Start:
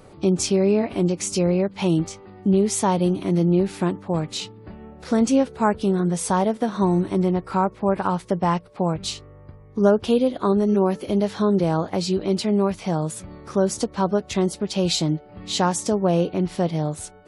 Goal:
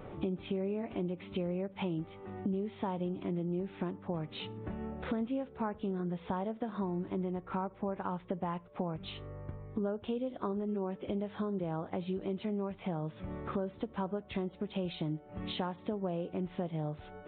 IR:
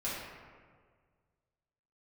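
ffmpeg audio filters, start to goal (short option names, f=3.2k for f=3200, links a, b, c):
-filter_complex "[0:a]aemphasis=mode=reproduction:type=50fm,acompressor=threshold=-35dB:ratio=5,asplit=2[a][b];[1:a]atrim=start_sample=2205,afade=t=out:st=0.16:d=0.01,atrim=end_sample=7497[c];[b][c]afir=irnorm=-1:irlink=0,volume=-23.5dB[d];[a][d]amix=inputs=2:normalize=0,aresample=8000,aresample=44100"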